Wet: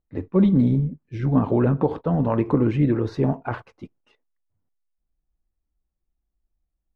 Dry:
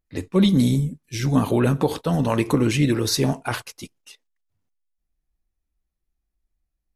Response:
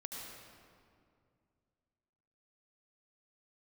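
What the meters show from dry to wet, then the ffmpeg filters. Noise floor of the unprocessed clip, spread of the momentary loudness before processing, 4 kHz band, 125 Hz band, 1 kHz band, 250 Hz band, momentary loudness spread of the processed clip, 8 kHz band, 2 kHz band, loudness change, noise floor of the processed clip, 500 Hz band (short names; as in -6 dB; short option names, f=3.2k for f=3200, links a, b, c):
-80 dBFS, 10 LU, under -20 dB, 0.0 dB, -1.5 dB, 0.0 dB, 10 LU, under -30 dB, -8.0 dB, -0.5 dB, -80 dBFS, 0.0 dB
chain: -af "lowpass=1.2k"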